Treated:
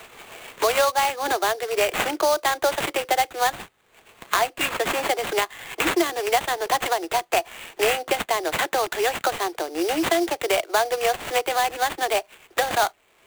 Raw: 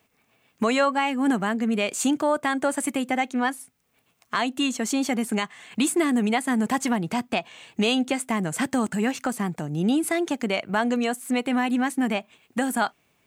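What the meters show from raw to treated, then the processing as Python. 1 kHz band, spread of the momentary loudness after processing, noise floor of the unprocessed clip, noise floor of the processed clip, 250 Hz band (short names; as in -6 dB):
+5.0 dB, 5 LU, -68 dBFS, -60 dBFS, -9.5 dB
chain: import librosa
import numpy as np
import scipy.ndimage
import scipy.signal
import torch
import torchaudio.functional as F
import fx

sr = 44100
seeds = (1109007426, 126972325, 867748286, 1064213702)

y = scipy.signal.sosfilt(scipy.signal.butter(16, 330.0, 'highpass', fs=sr, output='sos'), x)
y = fx.sample_hold(y, sr, seeds[0], rate_hz=5300.0, jitter_pct=20)
y = fx.dynamic_eq(y, sr, hz=710.0, q=3.5, threshold_db=-38.0, ratio=4.0, max_db=5)
y = fx.band_squash(y, sr, depth_pct=70)
y = y * librosa.db_to_amplitude(3.0)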